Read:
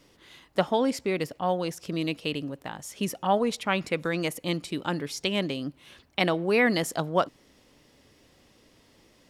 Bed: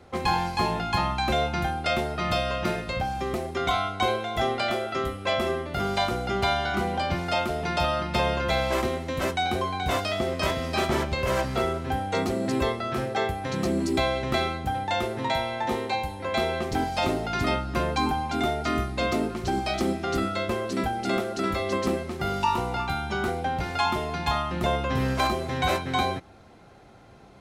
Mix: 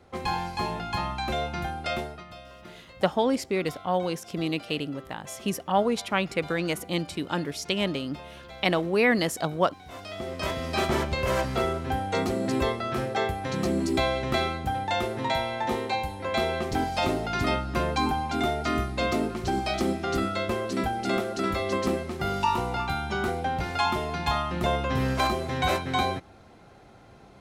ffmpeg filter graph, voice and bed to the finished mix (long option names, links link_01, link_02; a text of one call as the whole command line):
ffmpeg -i stem1.wav -i stem2.wav -filter_complex "[0:a]adelay=2450,volume=0.5dB[link_01];[1:a]volume=14.5dB,afade=type=out:start_time=1.99:duration=0.26:silence=0.177828,afade=type=in:start_time=9.89:duration=0.93:silence=0.112202[link_02];[link_01][link_02]amix=inputs=2:normalize=0" out.wav